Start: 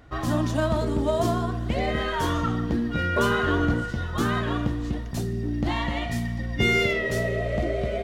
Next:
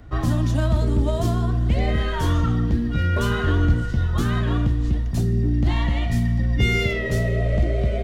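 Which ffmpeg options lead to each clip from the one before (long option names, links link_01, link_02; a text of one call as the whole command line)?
ffmpeg -i in.wav -filter_complex "[0:a]lowshelf=frequency=240:gain=11.5,acrossover=split=110|1700|3300[link_01][link_02][link_03][link_04];[link_02]alimiter=limit=-16.5dB:level=0:latency=1:release=442[link_05];[link_01][link_05][link_03][link_04]amix=inputs=4:normalize=0" out.wav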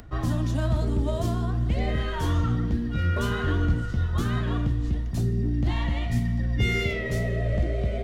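ffmpeg -i in.wav -af "flanger=delay=3.9:depth=9.9:regen=81:speed=1.1:shape=triangular,acompressor=mode=upward:threshold=-42dB:ratio=2.5" out.wav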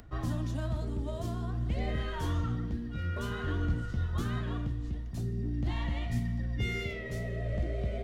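ffmpeg -i in.wav -af "tremolo=f=0.5:d=0.31,volume=-6.5dB" out.wav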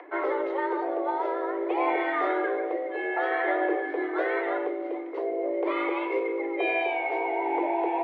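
ffmpeg -i in.wav -af "afreqshift=280,highpass=330,equalizer=frequency=370:width_type=q:width=4:gain=-5,equalizer=frequency=740:width_type=q:width=4:gain=9,equalizer=frequency=1100:width_type=q:width=4:gain=7,equalizer=frequency=2000:width_type=q:width=4:gain=9,lowpass=frequency=2700:width=0.5412,lowpass=frequency=2700:width=1.3066,volume=6.5dB" out.wav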